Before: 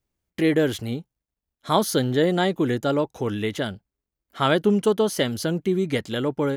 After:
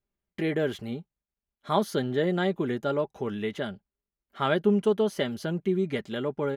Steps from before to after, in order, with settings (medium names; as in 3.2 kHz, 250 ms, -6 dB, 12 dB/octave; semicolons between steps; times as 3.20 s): tone controls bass -1 dB, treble -10 dB; comb 5 ms, depth 42%; trim -5.5 dB